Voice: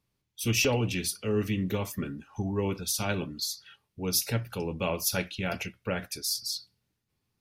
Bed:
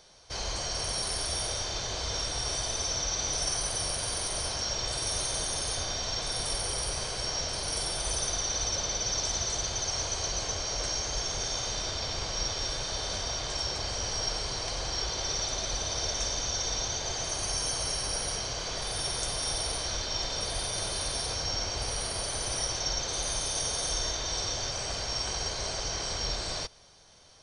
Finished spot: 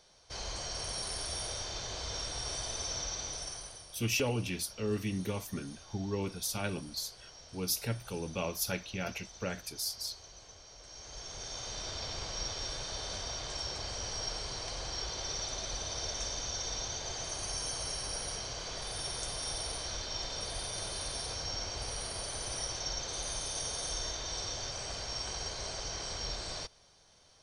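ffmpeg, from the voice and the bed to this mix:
-filter_complex "[0:a]adelay=3550,volume=-5.5dB[a];[1:a]volume=9dB,afade=t=out:st=3:d=0.86:silence=0.177828,afade=t=in:st=10.85:d=1.14:silence=0.177828[b];[a][b]amix=inputs=2:normalize=0"

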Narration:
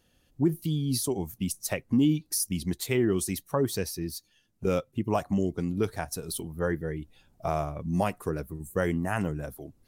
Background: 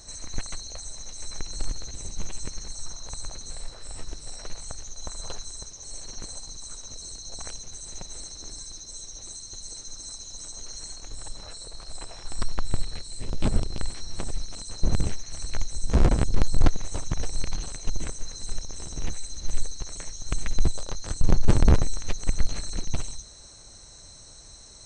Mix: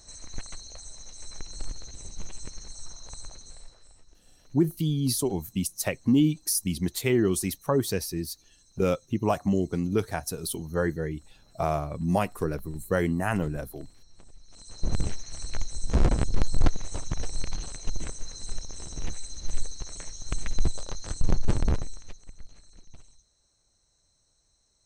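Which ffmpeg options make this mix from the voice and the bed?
-filter_complex "[0:a]adelay=4150,volume=2dB[a];[1:a]volume=13.5dB,afade=t=out:st=3.17:d=0.84:silence=0.158489,afade=t=in:st=14.43:d=0.58:silence=0.112202,afade=t=out:st=21.12:d=1.15:silence=0.105925[b];[a][b]amix=inputs=2:normalize=0"

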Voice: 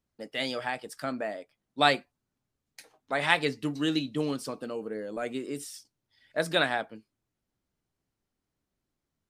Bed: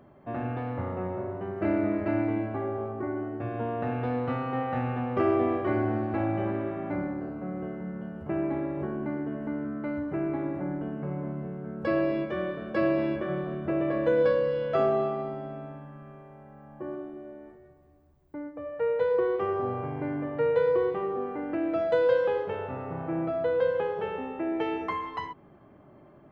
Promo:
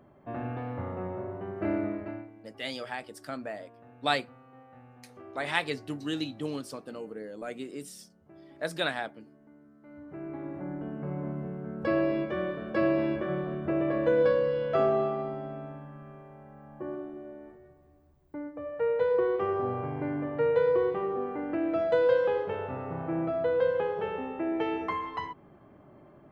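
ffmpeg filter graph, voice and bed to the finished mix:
-filter_complex "[0:a]adelay=2250,volume=-4.5dB[a];[1:a]volume=20dB,afade=t=out:st=1.75:d=0.55:silence=0.0944061,afade=t=in:st=9.81:d=1.48:silence=0.0707946[b];[a][b]amix=inputs=2:normalize=0"

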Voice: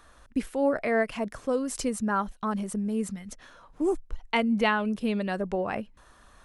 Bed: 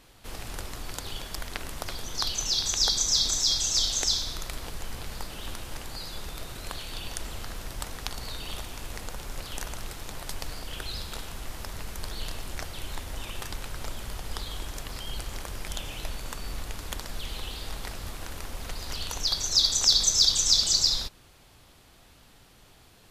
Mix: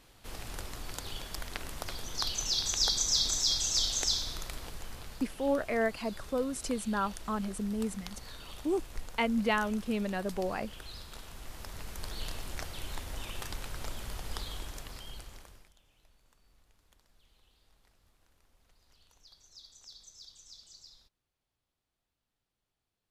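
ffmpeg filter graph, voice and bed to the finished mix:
-filter_complex "[0:a]adelay=4850,volume=-4.5dB[a];[1:a]volume=3dB,afade=t=out:st=4.35:d=0.96:silence=0.473151,afade=t=in:st=11.12:d=1.12:silence=0.446684,afade=t=out:st=14.4:d=1.32:silence=0.0398107[b];[a][b]amix=inputs=2:normalize=0"

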